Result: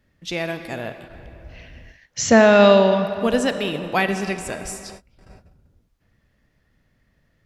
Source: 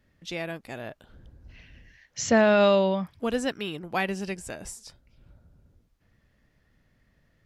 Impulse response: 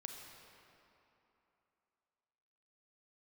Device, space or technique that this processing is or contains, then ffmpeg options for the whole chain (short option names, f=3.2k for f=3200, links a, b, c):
keyed gated reverb: -filter_complex "[0:a]asplit=3[a][b][c];[1:a]atrim=start_sample=2205[d];[b][d]afir=irnorm=-1:irlink=0[e];[c]apad=whole_len=328710[f];[e][f]sidechaingate=range=-33dB:threshold=-53dB:ratio=16:detection=peak,volume=4.5dB[g];[a][g]amix=inputs=2:normalize=0,volume=1.5dB"